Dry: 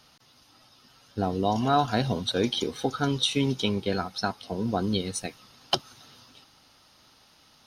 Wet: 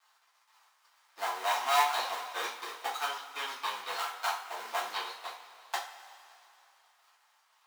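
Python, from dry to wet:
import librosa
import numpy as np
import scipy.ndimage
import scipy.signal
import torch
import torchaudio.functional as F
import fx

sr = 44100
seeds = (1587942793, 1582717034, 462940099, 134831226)

y = fx.dead_time(x, sr, dead_ms=0.24)
y = fx.ladder_highpass(y, sr, hz=830.0, resonance_pct=45)
y = fx.rev_double_slope(y, sr, seeds[0], early_s=0.35, late_s=2.8, knee_db=-18, drr_db=-6.5)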